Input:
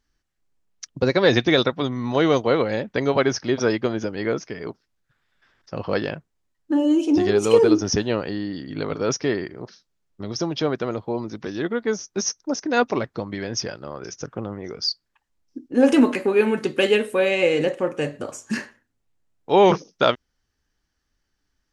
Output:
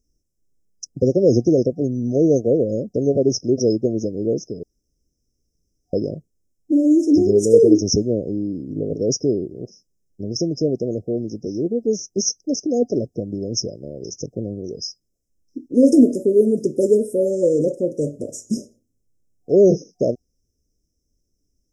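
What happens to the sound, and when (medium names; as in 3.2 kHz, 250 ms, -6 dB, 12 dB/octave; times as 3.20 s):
4.63–5.93 s: room tone
whole clip: high-order bell 1.4 kHz -15 dB 2.3 oct; FFT band-reject 730–5000 Hz; trim +4 dB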